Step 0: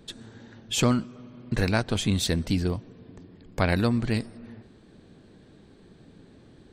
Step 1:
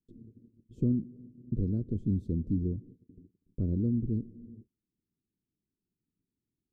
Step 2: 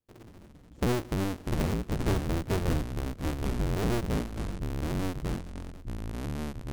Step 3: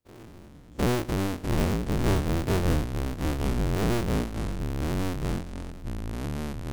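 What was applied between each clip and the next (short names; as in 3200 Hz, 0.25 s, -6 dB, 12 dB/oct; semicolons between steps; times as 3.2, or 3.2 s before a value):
gate -45 dBFS, range -32 dB; inverse Chebyshev low-pass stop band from 740 Hz, stop band 40 dB; gain -4 dB
cycle switcher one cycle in 2, inverted; echoes that change speed 81 ms, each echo -4 st, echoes 3
spectral dilation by 60 ms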